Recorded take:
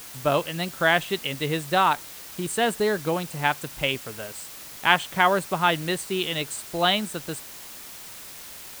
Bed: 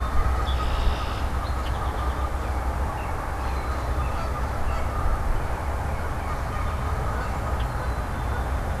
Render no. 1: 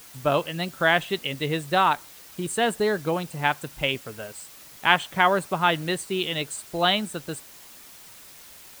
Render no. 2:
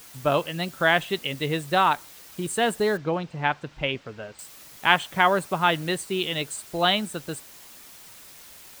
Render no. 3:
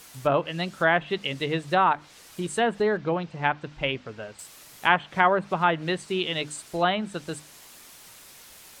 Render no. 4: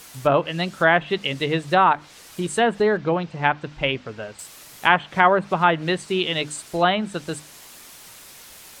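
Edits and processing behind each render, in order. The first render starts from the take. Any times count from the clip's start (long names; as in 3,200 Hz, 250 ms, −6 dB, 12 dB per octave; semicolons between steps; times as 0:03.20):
broadband denoise 6 dB, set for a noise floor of −41 dBFS
0:02.97–0:04.39: high-frequency loss of the air 170 metres
treble cut that deepens with the level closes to 2,000 Hz, closed at −18 dBFS; mains-hum notches 50/100/150/200/250/300 Hz
level +4.5 dB; brickwall limiter −1 dBFS, peak gain reduction 1.5 dB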